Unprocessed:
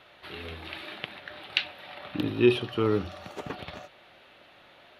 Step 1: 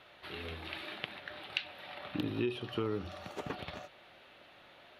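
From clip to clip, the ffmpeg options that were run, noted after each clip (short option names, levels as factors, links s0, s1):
-af "acompressor=threshold=0.0447:ratio=10,volume=0.708"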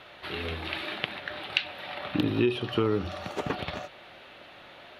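-af "highshelf=f=10000:g=-5.5,volume=2.82"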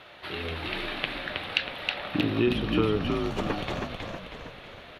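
-filter_complex "[0:a]asplit=8[s0][s1][s2][s3][s4][s5][s6][s7];[s1]adelay=319,afreqshift=-59,volume=0.668[s8];[s2]adelay=638,afreqshift=-118,volume=0.335[s9];[s3]adelay=957,afreqshift=-177,volume=0.168[s10];[s4]adelay=1276,afreqshift=-236,volume=0.0832[s11];[s5]adelay=1595,afreqshift=-295,volume=0.0417[s12];[s6]adelay=1914,afreqshift=-354,volume=0.0209[s13];[s7]adelay=2233,afreqshift=-413,volume=0.0105[s14];[s0][s8][s9][s10][s11][s12][s13][s14]amix=inputs=8:normalize=0"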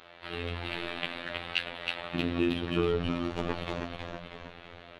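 -af "adynamicsmooth=sensitivity=7:basefreq=6900,afftfilt=real='hypot(re,im)*cos(PI*b)':imag='0':win_size=2048:overlap=0.75"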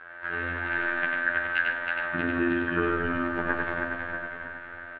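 -filter_complex "[0:a]lowpass=f=1600:t=q:w=12,asplit=2[s0][s1];[s1]aecho=0:1:96.21|145.8:0.708|0.251[s2];[s0][s2]amix=inputs=2:normalize=0,volume=0.891"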